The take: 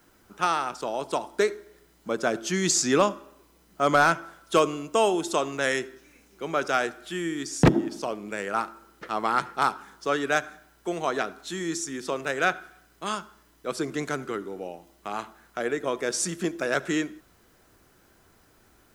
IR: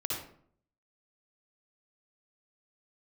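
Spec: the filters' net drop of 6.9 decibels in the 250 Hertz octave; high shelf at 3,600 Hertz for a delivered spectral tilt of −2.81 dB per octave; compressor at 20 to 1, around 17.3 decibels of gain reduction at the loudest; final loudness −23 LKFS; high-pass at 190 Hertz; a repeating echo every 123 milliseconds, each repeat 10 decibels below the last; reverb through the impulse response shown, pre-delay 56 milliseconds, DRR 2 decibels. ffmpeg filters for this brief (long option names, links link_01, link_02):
-filter_complex "[0:a]highpass=190,equalizer=frequency=250:width_type=o:gain=-8.5,highshelf=frequency=3600:gain=-3.5,acompressor=threshold=-33dB:ratio=20,aecho=1:1:123|246|369|492:0.316|0.101|0.0324|0.0104,asplit=2[link_01][link_02];[1:a]atrim=start_sample=2205,adelay=56[link_03];[link_02][link_03]afir=irnorm=-1:irlink=0,volume=-6dB[link_04];[link_01][link_04]amix=inputs=2:normalize=0,volume=14dB"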